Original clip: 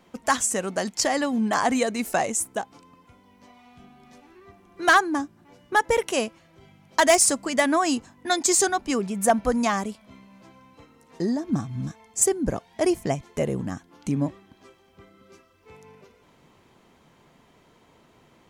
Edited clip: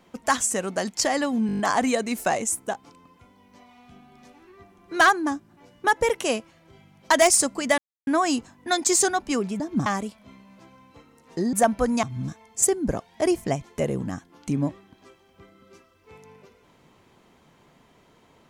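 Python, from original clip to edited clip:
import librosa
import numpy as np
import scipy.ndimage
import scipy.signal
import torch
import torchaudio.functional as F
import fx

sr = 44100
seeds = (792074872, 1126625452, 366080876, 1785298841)

y = fx.edit(x, sr, fx.stutter(start_s=1.47, slice_s=0.02, count=7),
    fx.insert_silence(at_s=7.66, length_s=0.29),
    fx.swap(start_s=9.19, length_s=0.5, other_s=11.36, other_length_s=0.26), tone=tone)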